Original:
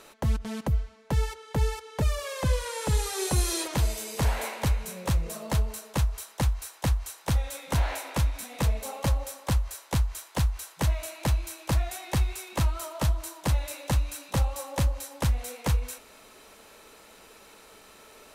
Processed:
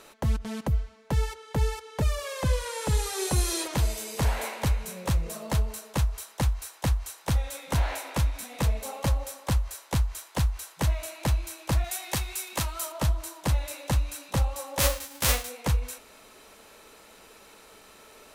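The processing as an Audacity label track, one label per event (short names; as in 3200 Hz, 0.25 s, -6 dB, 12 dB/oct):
11.840000	12.920000	tilt +2 dB/oct
14.780000	15.470000	spectral whitening exponent 0.3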